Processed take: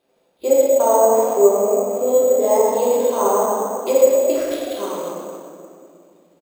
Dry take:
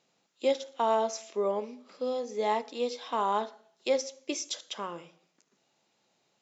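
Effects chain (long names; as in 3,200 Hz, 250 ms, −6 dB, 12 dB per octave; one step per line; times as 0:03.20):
treble cut that deepens with the level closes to 1,700 Hz, closed at −22.5 dBFS
parametric band 480 Hz +12.5 dB 1.6 octaves
echo with shifted repeats 116 ms, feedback 61%, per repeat +34 Hz, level −11 dB
convolution reverb RT60 2.3 s, pre-delay 3 ms, DRR −8 dB
bad sample-rate conversion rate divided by 6×, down none, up hold
level −4.5 dB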